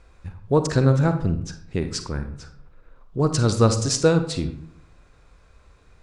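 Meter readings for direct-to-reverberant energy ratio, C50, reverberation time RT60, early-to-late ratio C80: 8.5 dB, 10.0 dB, 0.70 s, 13.5 dB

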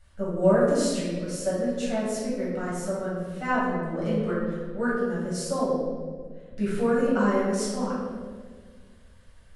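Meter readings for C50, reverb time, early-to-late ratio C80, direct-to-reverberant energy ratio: -1.0 dB, 1.7 s, 2.0 dB, -10.0 dB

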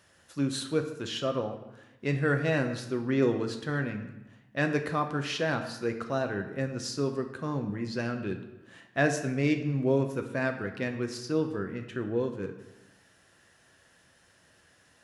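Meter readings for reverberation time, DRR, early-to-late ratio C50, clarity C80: 0.95 s, 5.0 dB, 9.0 dB, 11.0 dB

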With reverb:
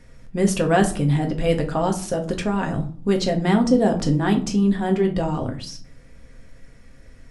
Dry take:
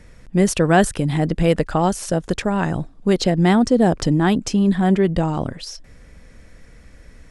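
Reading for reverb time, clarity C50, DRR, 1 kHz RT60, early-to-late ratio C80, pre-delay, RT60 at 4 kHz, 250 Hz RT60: 0.45 s, 12.5 dB, 2.5 dB, 0.45 s, 17.0 dB, 4 ms, 0.30 s, 0.75 s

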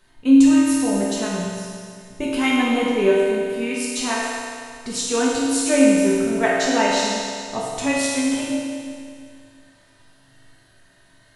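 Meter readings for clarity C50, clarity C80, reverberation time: -2.5 dB, -0.5 dB, 2.2 s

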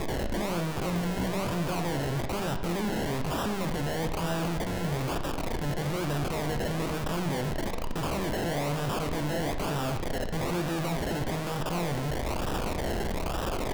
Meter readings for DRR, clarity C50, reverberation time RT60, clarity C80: 6.0 dB, 9.0 dB, 0.85 s, 11.0 dB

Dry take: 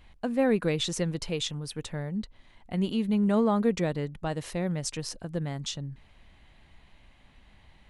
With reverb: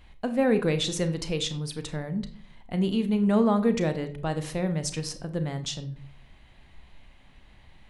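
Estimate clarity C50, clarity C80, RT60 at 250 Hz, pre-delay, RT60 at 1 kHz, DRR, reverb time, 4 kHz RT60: 13.5 dB, 17.0 dB, 0.70 s, 31 ms, 0.45 s, 9.0 dB, 0.55 s, 0.35 s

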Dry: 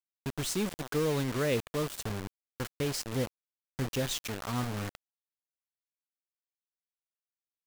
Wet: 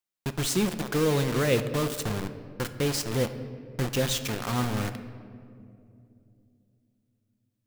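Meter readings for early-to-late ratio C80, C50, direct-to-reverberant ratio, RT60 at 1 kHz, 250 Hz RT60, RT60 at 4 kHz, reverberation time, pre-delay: 12.5 dB, 11.5 dB, 9.0 dB, 2.1 s, 3.8 s, 1.2 s, 2.7 s, 6 ms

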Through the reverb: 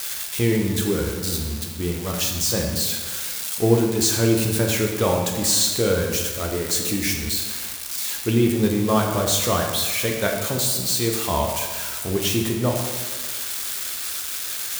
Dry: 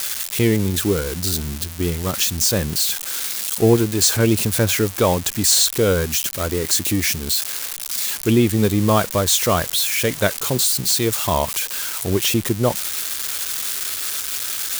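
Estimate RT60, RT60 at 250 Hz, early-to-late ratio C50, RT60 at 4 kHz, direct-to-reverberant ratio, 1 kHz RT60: 1.5 s, 1.5 s, 3.5 dB, 1.1 s, 0.5 dB, 1.5 s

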